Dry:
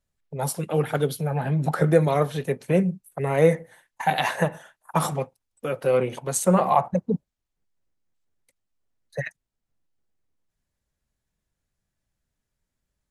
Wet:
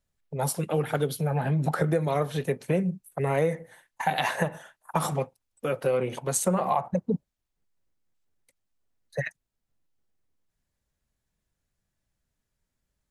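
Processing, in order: compressor 6:1, threshold -21 dBFS, peak gain reduction 9.5 dB

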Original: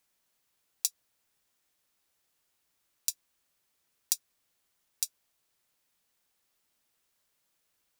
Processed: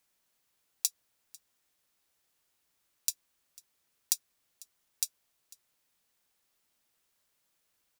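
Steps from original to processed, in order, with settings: echo 0.497 s -23 dB

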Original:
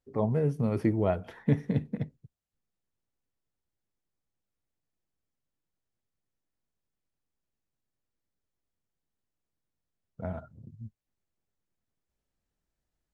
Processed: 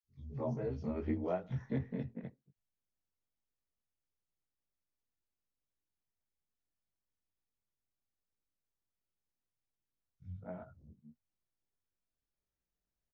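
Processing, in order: short-time reversal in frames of 44 ms; three bands offset in time highs, lows, mids 30/240 ms, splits 150/3500 Hz; gain -5 dB; AC-3 32 kbps 48000 Hz

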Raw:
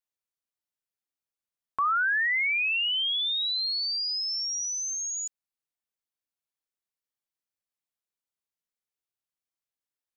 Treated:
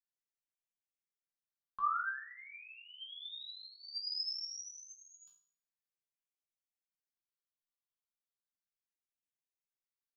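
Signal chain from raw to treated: phaser stages 6, 0.35 Hz, lowest notch 510–1200 Hz; resonator bank C3 sus4, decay 0.51 s; gain +8.5 dB

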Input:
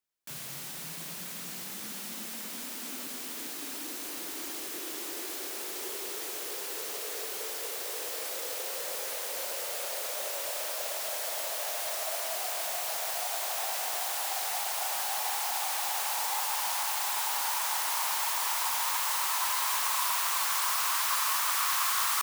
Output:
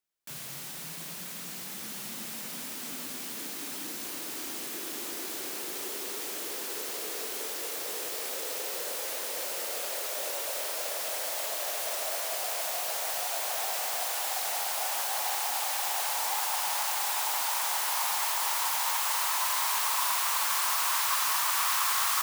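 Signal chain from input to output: diffused feedback echo 1.621 s, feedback 58%, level -6.5 dB

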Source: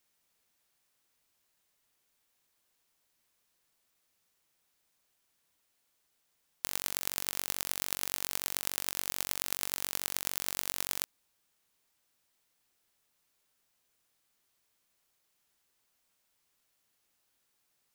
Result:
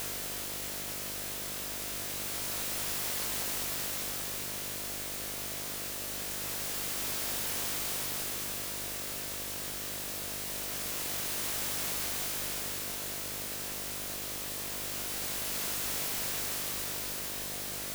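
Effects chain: Paulstretch 40×, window 0.10 s, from 8.7; buzz 50 Hz, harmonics 14, -48 dBFS -1 dB/oct

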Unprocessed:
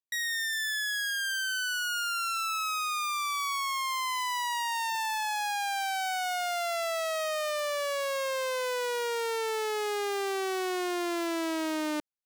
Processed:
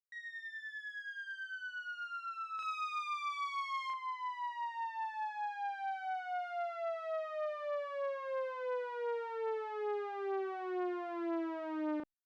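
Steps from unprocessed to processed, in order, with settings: LPF 1300 Hz 12 dB/oct, from 2.59 s 2700 Hz, from 3.9 s 1300 Hz; doubler 36 ms -3 dB; gain -8 dB; Opus 64 kbps 48000 Hz

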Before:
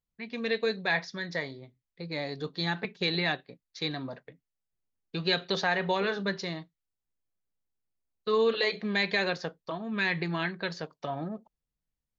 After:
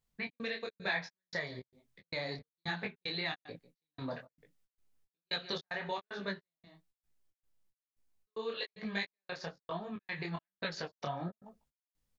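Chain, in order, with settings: on a send: echo 0.147 s -23.5 dB; on the sum: compressor 4:1, threshold -39 dBFS, peak gain reduction 14.5 dB; dynamic EQ 290 Hz, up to -5 dB, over -51 dBFS, Q 0.76; vocal rider 2 s; step gate "xx.xx.xx.." 113 bpm -60 dB; detuned doubles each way 39 cents; gain +8.5 dB

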